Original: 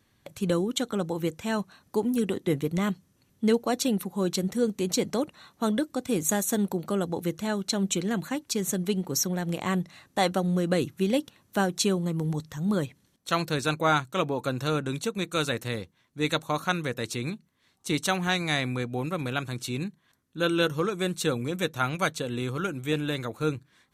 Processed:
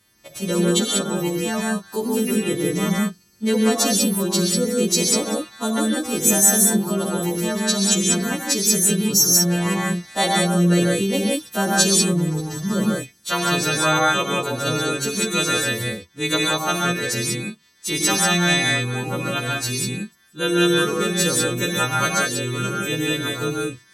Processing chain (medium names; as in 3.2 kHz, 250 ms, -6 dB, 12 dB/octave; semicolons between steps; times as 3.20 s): partials quantised in pitch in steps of 2 st; gated-style reverb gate 210 ms rising, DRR -2.5 dB; trim +1.5 dB